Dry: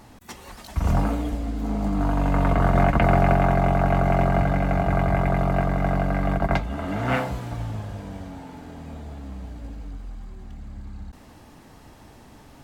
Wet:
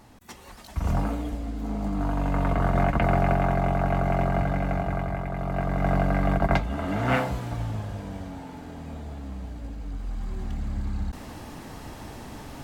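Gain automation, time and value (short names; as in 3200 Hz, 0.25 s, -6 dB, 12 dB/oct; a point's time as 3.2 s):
4.7 s -4 dB
5.29 s -10 dB
5.93 s 0 dB
9.78 s 0 dB
10.37 s +8 dB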